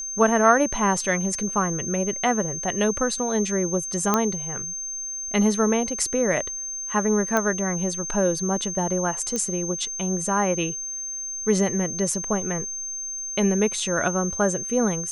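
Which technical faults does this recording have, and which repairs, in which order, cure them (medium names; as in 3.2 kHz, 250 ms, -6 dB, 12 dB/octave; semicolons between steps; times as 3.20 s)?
whine 6.3 kHz -29 dBFS
4.14 s: pop -5 dBFS
7.37 s: pop -8 dBFS
9.36 s: pop -13 dBFS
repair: de-click; band-stop 6.3 kHz, Q 30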